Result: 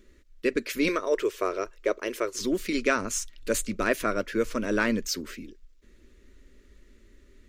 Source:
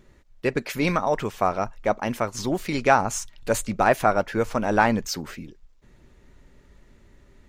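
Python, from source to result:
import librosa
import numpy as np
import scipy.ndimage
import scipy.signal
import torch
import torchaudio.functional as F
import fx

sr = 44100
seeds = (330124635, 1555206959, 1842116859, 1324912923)

y = fx.low_shelf_res(x, sr, hz=290.0, db=-9.0, q=3.0, at=(0.88, 2.41))
y = fx.fixed_phaser(y, sr, hz=330.0, stages=4)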